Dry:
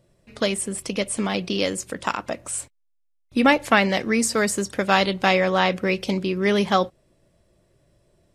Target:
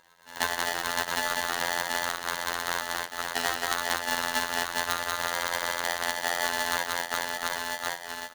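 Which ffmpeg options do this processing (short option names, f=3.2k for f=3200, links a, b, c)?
-filter_complex "[0:a]afftfilt=real='real(if(between(b,1,1012),(2*floor((b-1)/92)+1)*92-b,b),0)':imag='imag(if(between(b,1,1012),(2*floor((b-1)/92)+1)*92-b,b),0)*if(between(b,1,1012),-1,1)':win_size=2048:overlap=0.75,acrusher=bits=2:mode=log:mix=0:aa=0.000001,dynaudnorm=f=230:g=5:m=8.5dB,asplit=2[a][b];[b]aecho=0:1:180|414|718.2|1114|1628:0.631|0.398|0.251|0.158|0.1[c];[a][c]amix=inputs=2:normalize=0,acompressor=threshold=-25dB:ratio=12,acrusher=samples=40:mix=1:aa=0.000001,aemphasis=mode=production:type=75fm,afftfilt=real='hypot(re,im)*cos(PI*b)':imag='0':win_size=2048:overlap=0.75,lowpass=3.7k,aeval=exprs='val(0)*sgn(sin(2*PI*1300*n/s))':c=same,volume=3dB"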